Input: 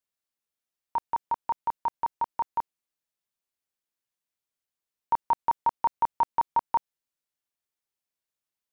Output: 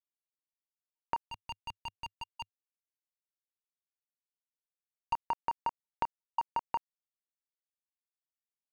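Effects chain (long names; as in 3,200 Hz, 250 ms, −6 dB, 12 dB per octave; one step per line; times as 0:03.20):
gate pattern "xxx.x..xxxx" 94 BPM −60 dB
power curve on the samples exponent 1.4
0:01.25–0:05.13: drawn EQ curve 100 Hz 0 dB, 400 Hz −20 dB, 1,600 Hz −21 dB, 2,800 Hz −2 dB
downward compressor 6 to 1, threshold −38 dBFS, peak gain reduction 16.5 dB
level +6.5 dB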